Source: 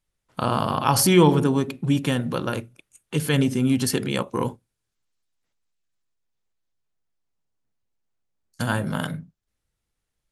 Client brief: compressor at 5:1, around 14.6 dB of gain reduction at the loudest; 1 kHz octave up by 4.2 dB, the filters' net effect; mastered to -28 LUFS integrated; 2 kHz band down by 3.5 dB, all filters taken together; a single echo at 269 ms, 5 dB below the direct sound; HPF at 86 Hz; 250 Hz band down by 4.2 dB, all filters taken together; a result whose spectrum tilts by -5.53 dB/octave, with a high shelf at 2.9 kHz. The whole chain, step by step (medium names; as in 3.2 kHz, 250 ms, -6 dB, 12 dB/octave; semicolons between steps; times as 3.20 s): high-pass 86 Hz; peaking EQ 250 Hz -6 dB; peaking EQ 1 kHz +7 dB; peaking EQ 2 kHz -5 dB; treble shelf 2.9 kHz -6 dB; compression 5:1, threshold -28 dBFS; delay 269 ms -5 dB; trim +4.5 dB